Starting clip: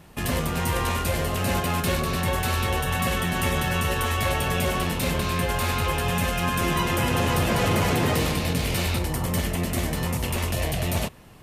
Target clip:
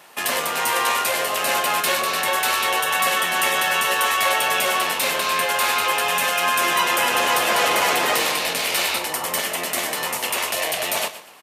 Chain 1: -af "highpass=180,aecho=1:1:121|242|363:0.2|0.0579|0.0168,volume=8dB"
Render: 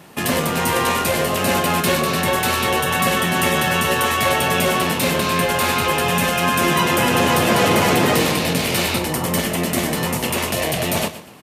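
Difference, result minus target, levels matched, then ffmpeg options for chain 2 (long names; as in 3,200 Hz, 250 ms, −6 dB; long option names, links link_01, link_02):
250 Hz band +13.5 dB
-af "highpass=670,aecho=1:1:121|242|363:0.2|0.0579|0.0168,volume=8dB"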